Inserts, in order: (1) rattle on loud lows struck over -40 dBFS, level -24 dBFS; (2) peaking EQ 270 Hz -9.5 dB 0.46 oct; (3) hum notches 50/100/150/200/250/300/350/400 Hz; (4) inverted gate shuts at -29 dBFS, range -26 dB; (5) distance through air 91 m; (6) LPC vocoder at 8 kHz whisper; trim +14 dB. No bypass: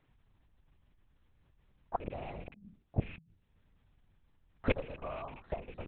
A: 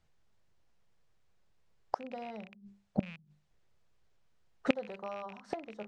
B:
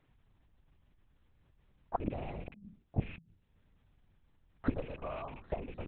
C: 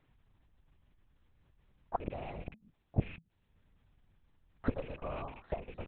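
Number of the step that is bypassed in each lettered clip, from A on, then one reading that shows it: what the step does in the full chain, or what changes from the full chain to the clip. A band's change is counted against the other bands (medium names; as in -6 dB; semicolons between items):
6, 125 Hz band -8.0 dB; 2, 4 kHz band -5.5 dB; 3, 2 kHz band -5.0 dB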